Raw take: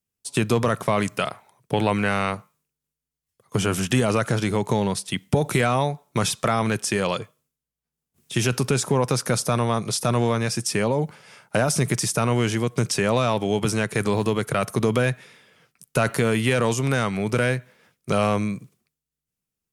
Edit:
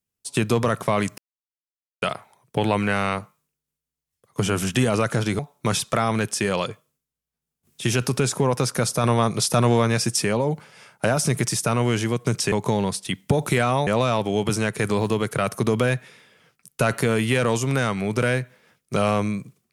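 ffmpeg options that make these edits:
ffmpeg -i in.wav -filter_complex "[0:a]asplit=7[link_01][link_02][link_03][link_04][link_05][link_06][link_07];[link_01]atrim=end=1.18,asetpts=PTS-STARTPTS,afade=type=out:start_time=1.176:duration=0.004:curve=hsin,apad=pad_dur=0.84[link_08];[link_02]atrim=start=1.18:end=4.552,asetpts=PTS-STARTPTS,afade=type=in:duration=0.004:curve=hsin[link_09];[link_03]atrim=start=5.898:end=9.552[link_10];[link_04]atrim=start=9.548:end=10.752,asetpts=PTS-STARTPTS,volume=3dB[link_11];[link_05]atrim=start=10.748:end=13.032[link_12];[link_06]atrim=start=4.548:end=5.902[link_13];[link_07]atrim=start=13.028[link_14];[link_08][link_09]concat=n=2:v=0:a=1[link_15];[link_15][link_10]acrossfade=duration=0.004:curve1=hsin:curve2=hsin[link_16];[link_16][link_11]acrossfade=duration=0.004:curve1=hsin:curve2=hsin[link_17];[link_17][link_12]acrossfade=duration=0.004:curve1=hsin:curve2=hsin[link_18];[link_18][link_13]acrossfade=duration=0.004:curve1=hsin:curve2=hsin[link_19];[link_19][link_14]acrossfade=duration=0.004:curve1=hsin:curve2=hsin" out.wav

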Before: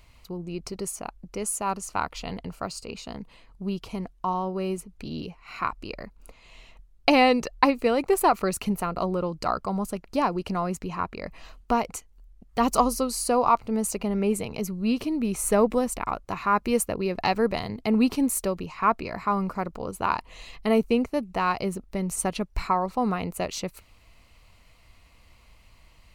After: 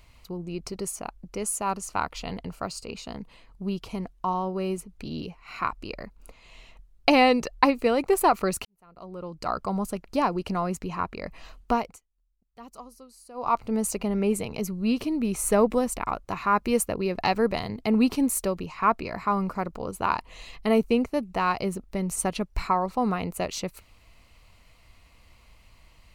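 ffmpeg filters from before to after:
ffmpeg -i in.wav -filter_complex "[0:a]asplit=4[link_01][link_02][link_03][link_04];[link_01]atrim=end=8.65,asetpts=PTS-STARTPTS,afade=type=out:start_time=8.646:duration=0.004:curve=hsin[link_05];[link_02]atrim=start=8.65:end=12,asetpts=PTS-STARTPTS,afade=type=in:duration=0.98:curve=qua,afade=type=out:start_time=3.07:duration=0.28:silence=0.0707946[link_06];[link_03]atrim=start=12:end=13.34,asetpts=PTS-STARTPTS,volume=-23dB[link_07];[link_04]atrim=start=13.34,asetpts=PTS-STARTPTS,afade=type=in:duration=0.28:silence=0.0707946[link_08];[link_05][link_06][link_07][link_08]concat=n=4:v=0:a=1" out.wav

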